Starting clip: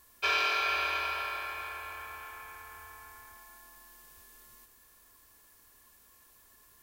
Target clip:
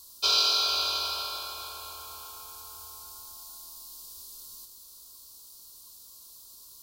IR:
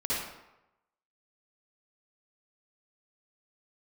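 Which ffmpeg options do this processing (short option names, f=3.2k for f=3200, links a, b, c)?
-af "asuperstop=centerf=1900:order=8:qfactor=2.1,highshelf=f=3.2k:t=q:w=3:g=10.5"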